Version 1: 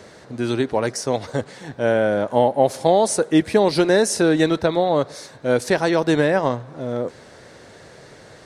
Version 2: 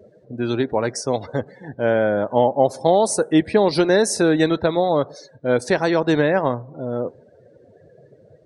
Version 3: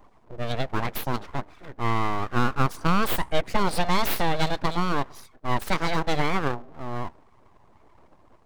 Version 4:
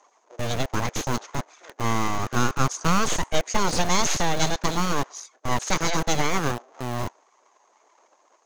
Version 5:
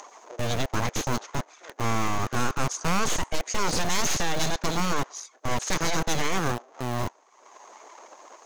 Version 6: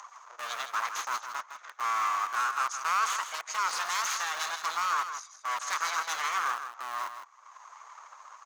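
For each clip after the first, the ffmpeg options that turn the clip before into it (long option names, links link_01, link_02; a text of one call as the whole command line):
ffmpeg -i in.wav -af "afftdn=noise_reduction=29:noise_floor=-37" out.wav
ffmpeg -i in.wav -af "highshelf=frequency=5800:gain=8,aeval=exprs='abs(val(0))':channel_layout=same,volume=-4dB" out.wav
ffmpeg -i in.wav -filter_complex "[0:a]lowpass=frequency=6500:width_type=q:width=12,acrossover=split=400|1200[link_01][link_02][link_03];[link_01]acrusher=bits=4:mix=0:aa=0.000001[link_04];[link_04][link_02][link_03]amix=inputs=3:normalize=0" out.wav
ffmpeg -i in.wav -af "acompressor=mode=upward:threshold=-35dB:ratio=2.5,volume=19dB,asoftclip=hard,volume=-19dB" out.wav
ffmpeg -i in.wav -af "highpass=frequency=1200:width_type=q:width=3.7,aecho=1:1:160:0.355,volume=-6.5dB" out.wav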